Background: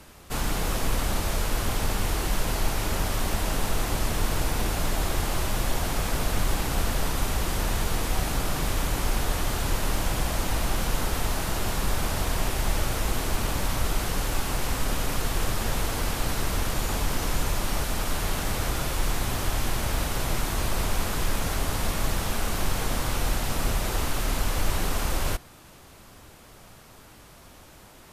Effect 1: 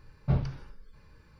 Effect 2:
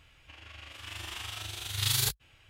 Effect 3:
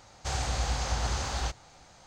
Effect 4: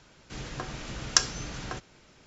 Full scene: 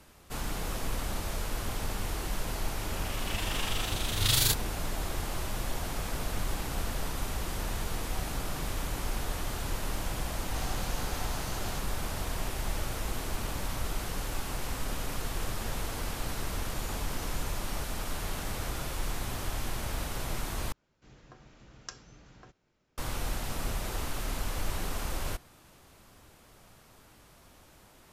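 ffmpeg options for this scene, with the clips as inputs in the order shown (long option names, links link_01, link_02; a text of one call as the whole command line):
ffmpeg -i bed.wav -i cue0.wav -i cue1.wav -i cue2.wav -i cue3.wav -filter_complex "[0:a]volume=-7.5dB[link_01];[2:a]dynaudnorm=framelen=340:gausssize=3:maxgain=15dB[link_02];[3:a]aecho=1:1:6.8:0.8[link_03];[4:a]highshelf=frequency=2000:gain=-7[link_04];[link_01]asplit=2[link_05][link_06];[link_05]atrim=end=20.724[link_07];[link_04]atrim=end=2.26,asetpts=PTS-STARTPTS,volume=-16dB[link_08];[link_06]atrim=start=22.976[link_09];[link_02]atrim=end=2.49,asetpts=PTS-STARTPTS,volume=-10.5dB,afade=type=in:duration=0.004:curve=hsin,afade=type=out:start_time=2.486:duration=0.004:curve=hsin,adelay=2430[link_10];[link_03]atrim=end=2.06,asetpts=PTS-STARTPTS,volume=-11dB,afade=type=in:duration=0.004:curve=hsin,afade=type=out:start_time=2.056:duration=0.004:curve=hsin,adelay=10290[link_11];[link_07][link_08]acrossfade=duration=0.004:curve1=hsin:curve2=hsin[link_12];[link_12][link_09]acrossfade=duration=0.004:curve1=hsin:curve2=hsin[link_13];[link_13][link_10][link_11]amix=inputs=3:normalize=0" out.wav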